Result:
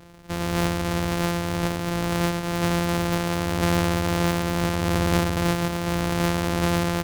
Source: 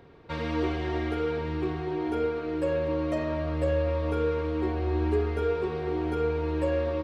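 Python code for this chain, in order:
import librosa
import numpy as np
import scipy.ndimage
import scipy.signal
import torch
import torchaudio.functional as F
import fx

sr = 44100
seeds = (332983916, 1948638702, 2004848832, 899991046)

y = np.r_[np.sort(x[:len(x) // 256 * 256].reshape(-1, 256), axis=1).ravel(), x[len(x) // 256 * 256:]]
y = fx.doppler_dist(y, sr, depth_ms=0.58)
y = y * 10.0 ** (5.0 / 20.0)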